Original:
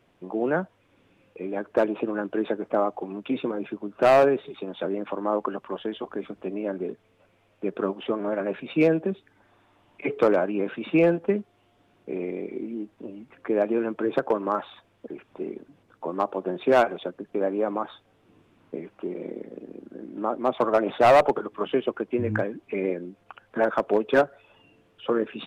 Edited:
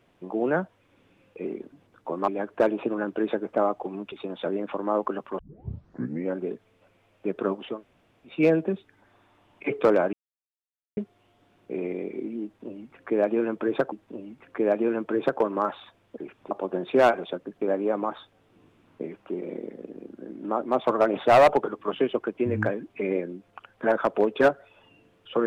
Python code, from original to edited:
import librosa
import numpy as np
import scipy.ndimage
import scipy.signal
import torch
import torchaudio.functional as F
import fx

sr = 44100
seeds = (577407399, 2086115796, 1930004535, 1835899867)

y = fx.edit(x, sr, fx.cut(start_s=3.29, length_s=1.21),
    fx.tape_start(start_s=5.77, length_s=0.98),
    fx.room_tone_fill(start_s=8.1, length_s=0.62, crossfade_s=0.24),
    fx.silence(start_s=10.51, length_s=0.84),
    fx.repeat(start_s=12.82, length_s=1.48, count=2),
    fx.move(start_s=15.41, length_s=0.83, to_s=1.45), tone=tone)